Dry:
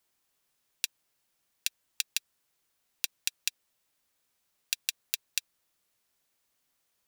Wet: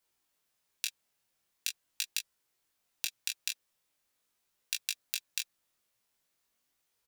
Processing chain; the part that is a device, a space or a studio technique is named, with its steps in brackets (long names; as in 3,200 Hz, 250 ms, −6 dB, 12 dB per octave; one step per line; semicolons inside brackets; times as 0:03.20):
double-tracked vocal (double-tracking delay 17 ms −7 dB; chorus effect 0.43 Hz, delay 19 ms, depth 7.6 ms)